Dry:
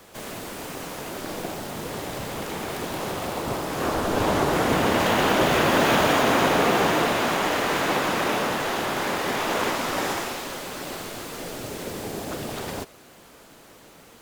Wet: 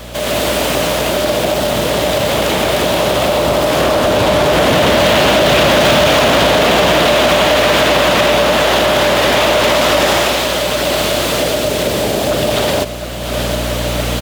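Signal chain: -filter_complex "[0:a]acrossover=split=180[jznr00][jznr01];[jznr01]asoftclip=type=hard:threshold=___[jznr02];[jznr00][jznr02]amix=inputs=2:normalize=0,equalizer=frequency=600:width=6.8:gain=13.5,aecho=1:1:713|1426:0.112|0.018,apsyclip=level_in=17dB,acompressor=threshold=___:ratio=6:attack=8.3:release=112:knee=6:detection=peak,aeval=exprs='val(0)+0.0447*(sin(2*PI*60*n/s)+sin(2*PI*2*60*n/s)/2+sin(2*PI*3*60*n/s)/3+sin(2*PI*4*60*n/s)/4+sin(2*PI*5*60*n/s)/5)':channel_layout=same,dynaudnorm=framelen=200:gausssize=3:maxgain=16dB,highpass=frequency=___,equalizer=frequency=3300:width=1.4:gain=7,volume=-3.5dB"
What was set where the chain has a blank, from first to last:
-23.5dB, -12dB, 54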